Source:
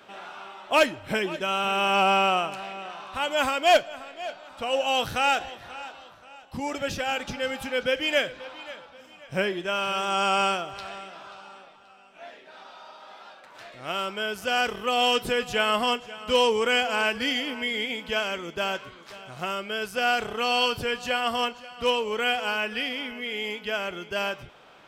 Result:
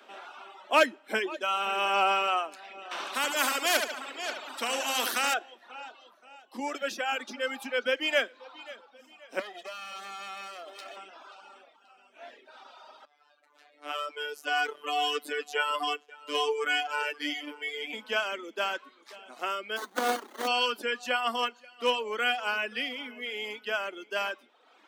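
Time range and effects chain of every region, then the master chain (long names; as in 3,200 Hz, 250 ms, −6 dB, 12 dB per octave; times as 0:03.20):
0:02.91–0:05.34: high-shelf EQ 9,700 Hz +5 dB + repeating echo 73 ms, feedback 41%, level −6 dB + every bin compressed towards the loudest bin 2 to 1
0:09.39–0:10.97: lower of the sound and its delayed copy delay 1.6 ms + high-pass filter 160 Hz 24 dB per octave + downward compressor, threshold −32 dBFS
0:13.05–0:17.93: phases set to zero 147 Hz + noise gate −47 dBFS, range −8 dB
0:19.76–0:20.46: spectral envelope flattened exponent 0.1 + windowed peak hold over 17 samples
whole clip: reverb reduction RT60 0.98 s; Butterworth high-pass 220 Hz 72 dB per octave; dynamic equaliser 1,400 Hz, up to +4 dB, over −38 dBFS, Q 1.5; level −3 dB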